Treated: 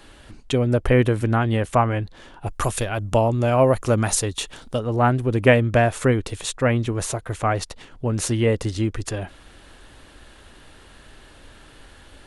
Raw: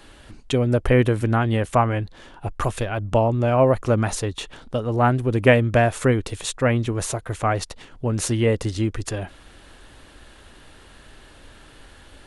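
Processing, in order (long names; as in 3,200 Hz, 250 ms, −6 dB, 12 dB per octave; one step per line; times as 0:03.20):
0:02.46–0:04.79: high-shelf EQ 5,200 Hz +12 dB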